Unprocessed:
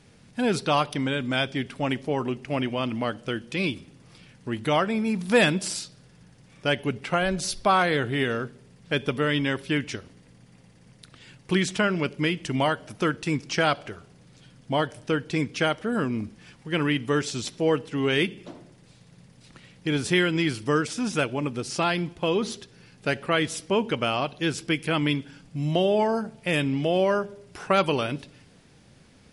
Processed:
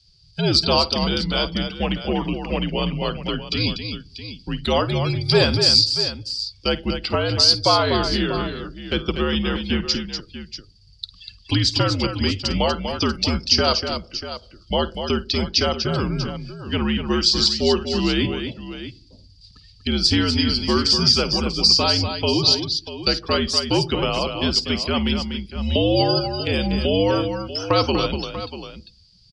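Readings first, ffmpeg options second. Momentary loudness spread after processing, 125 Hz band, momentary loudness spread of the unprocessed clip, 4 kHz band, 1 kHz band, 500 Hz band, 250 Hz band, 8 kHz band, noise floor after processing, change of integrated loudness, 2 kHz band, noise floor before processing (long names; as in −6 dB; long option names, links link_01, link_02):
15 LU, +6.0 dB, 10 LU, +13.0 dB, +2.0 dB, +3.0 dB, +3.5 dB, +6.0 dB, −51 dBFS, +6.0 dB, −1.0 dB, −55 dBFS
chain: -filter_complex "[0:a]afftdn=noise_reduction=25:noise_floor=-41,highpass=frequency=78:width=0.5412,highpass=frequency=78:width=1.3066,acrossover=split=410|1600[link_01][link_02][link_03];[link_03]acompressor=threshold=-48dB:ratio=5[link_04];[link_01][link_02][link_04]amix=inputs=3:normalize=0,aexciter=amount=8.2:drive=0.8:freq=2900,lowpass=frequency=4800:width_type=q:width=15,aecho=1:1:52|243|640:0.15|0.422|0.237,afreqshift=-77,volume=3dB"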